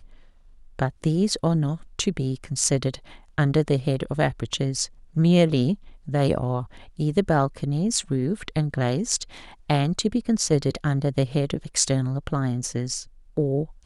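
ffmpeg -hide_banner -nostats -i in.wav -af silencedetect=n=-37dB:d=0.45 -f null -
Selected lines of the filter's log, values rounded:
silence_start: 0.00
silence_end: 0.79 | silence_duration: 0.79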